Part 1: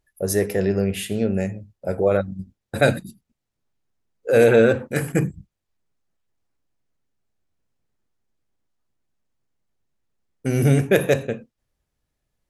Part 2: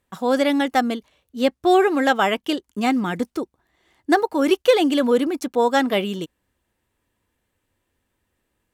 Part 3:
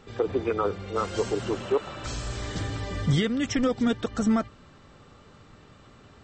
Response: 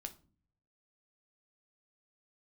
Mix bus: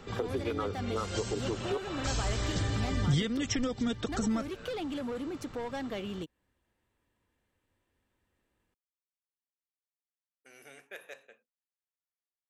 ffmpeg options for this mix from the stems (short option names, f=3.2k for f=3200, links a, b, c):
-filter_complex "[0:a]highpass=990,volume=-19.5dB[a];[1:a]asoftclip=type=tanh:threshold=-17.5dB,volume=-4.5dB[b];[2:a]acompressor=threshold=-32dB:ratio=1.5,volume=3dB[c];[a][b]amix=inputs=2:normalize=0,highshelf=f=7k:g=-8.5,acompressor=threshold=-39dB:ratio=2,volume=0dB[d];[c][d]amix=inputs=2:normalize=0,acrossover=split=150|3000[e][f][g];[f]acompressor=threshold=-34dB:ratio=2.5[h];[e][h][g]amix=inputs=3:normalize=0"